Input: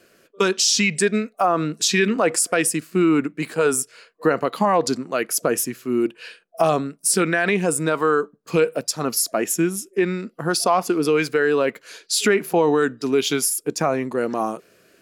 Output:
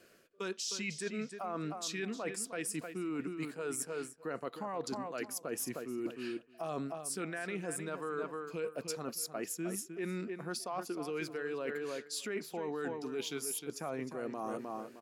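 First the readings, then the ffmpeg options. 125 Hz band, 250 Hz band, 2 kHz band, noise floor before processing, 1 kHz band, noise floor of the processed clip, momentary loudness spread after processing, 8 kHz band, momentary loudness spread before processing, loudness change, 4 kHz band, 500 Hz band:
-17.0 dB, -17.5 dB, -18.5 dB, -59 dBFS, -19.0 dB, -58 dBFS, 3 LU, -18.0 dB, 6 LU, -18.5 dB, -18.5 dB, -18.5 dB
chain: -filter_complex "[0:a]asplit=2[s0][s1];[s1]adelay=309,lowpass=f=4200:p=1,volume=0.316,asplit=2[s2][s3];[s3]adelay=309,lowpass=f=4200:p=1,volume=0.24,asplit=2[s4][s5];[s5]adelay=309,lowpass=f=4200:p=1,volume=0.24[s6];[s0][s2][s4][s6]amix=inputs=4:normalize=0,areverse,acompressor=threshold=0.0398:ratio=12,areverse,volume=0.447"

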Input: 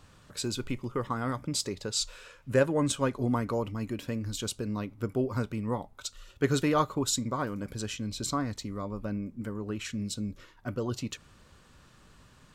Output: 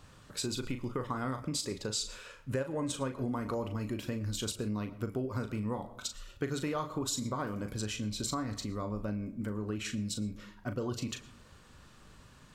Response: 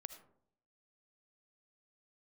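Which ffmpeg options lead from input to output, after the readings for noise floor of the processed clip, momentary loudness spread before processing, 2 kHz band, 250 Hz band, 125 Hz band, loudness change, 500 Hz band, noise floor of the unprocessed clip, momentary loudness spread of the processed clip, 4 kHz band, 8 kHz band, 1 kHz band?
-57 dBFS, 10 LU, -5.0 dB, -4.0 dB, -3.5 dB, -4.5 dB, -6.0 dB, -58 dBFS, 5 LU, -3.0 dB, -3.5 dB, -5.5 dB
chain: -filter_complex "[0:a]asplit=2[s0][s1];[1:a]atrim=start_sample=2205,adelay=38[s2];[s1][s2]afir=irnorm=-1:irlink=0,volume=0.668[s3];[s0][s3]amix=inputs=2:normalize=0,acompressor=threshold=0.0282:ratio=6"

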